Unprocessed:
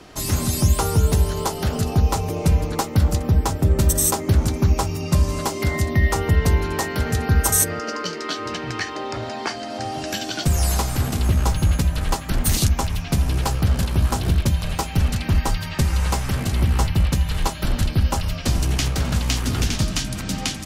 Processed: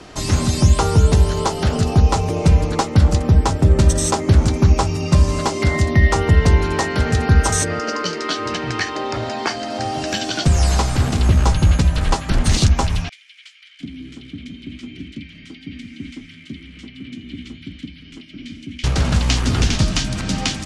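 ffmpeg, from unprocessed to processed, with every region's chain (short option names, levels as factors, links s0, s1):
-filter_complex "[0:a]asettb=1/sr,asplit=3[s0][s1][s2];[s0]atrim=end=13.094[s3];[s1]atrim=start=13.09:end=18.84,asetpts=PTS-STARTPTS,afade=t=in:d=0.004:c=qsin,afade=t=out:st=5.746:d=0.004:c=qsin,asplit=3[s4][s5][s6];[s4]bandpass=f=270:t=q:w=8,volume=1[s7];[s5]bandpass=f=2290:t=q:w=8,volume=0.501[s8];[s6]bandpass=f=3010:t=q:w=8,volume=0.355[s9];[s7][s8][s9]amix=inputs=3:normalize=0,equalizer=f=510:t=o:w=0.44:g=-9,acrossover=split=1400[s10][s11];[s10]adelay=710[s12];[s12][s11]amix=inputs=2:normalize=0,atrim=end_sample=253575[s13];[s2]atrim=start=18.836[s14];[s3][s13]acrossfade=d=0.004:c1=hsin:c2=qsin[s15];[s15][s14]acrossfade=d=0.004:c1=qsin:c2=hsin,acrossover=split=7200[s16][s17];[s17]acompressor=threshold=0.00794:ratio=4:attack=1:release=60[s18];[s16][s18]amix=inputs=2:normalize=0,lowpass=f=9900:w=0.5412,lowpass=f=9900:w=1.3066,volume=1.68"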